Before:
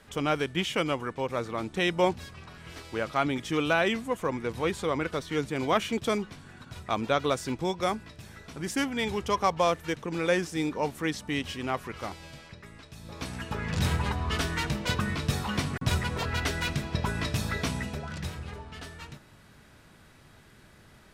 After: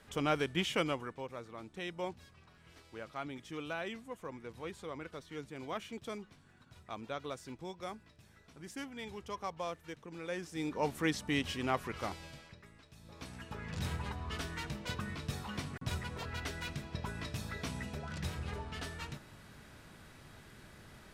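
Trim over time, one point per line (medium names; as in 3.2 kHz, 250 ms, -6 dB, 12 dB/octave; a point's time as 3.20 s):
0.81 s -4.5 dB
1.40 s -15 dB
10.29 s -15 dB
10.92 s -2.5 dB
12.15 s -2.5 dB
12.75 s -11 dB
17.55 s -11 dB
18.58 s 0 dB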